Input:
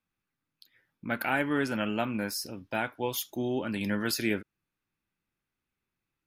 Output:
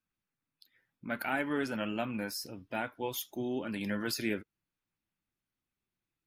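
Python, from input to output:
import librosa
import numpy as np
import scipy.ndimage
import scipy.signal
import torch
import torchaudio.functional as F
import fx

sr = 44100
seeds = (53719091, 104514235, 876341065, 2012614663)

y = fx.spec_quant(x, sr, step_db=15)
y = y * librosa.db_to_amplitude(-4.0)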